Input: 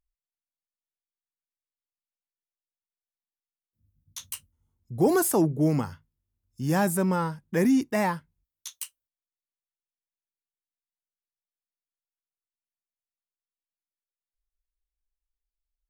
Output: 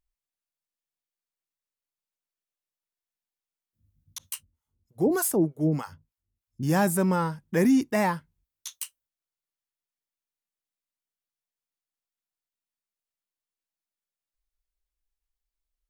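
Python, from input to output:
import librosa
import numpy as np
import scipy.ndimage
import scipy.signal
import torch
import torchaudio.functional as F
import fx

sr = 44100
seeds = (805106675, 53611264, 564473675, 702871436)

y = fx.harmonic_tremolo(x, sr, hz=3.3, depth_pct=100, crossover_hz=640.0, at=(4.18, 6.63))
y = y * librosa.db_to_amplitude(1.0)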